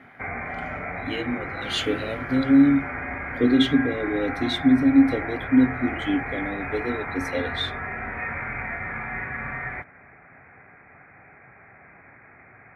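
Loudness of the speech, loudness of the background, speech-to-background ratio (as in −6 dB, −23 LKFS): −23.0 LKFS, −31.0 LKFS, 8.0 dB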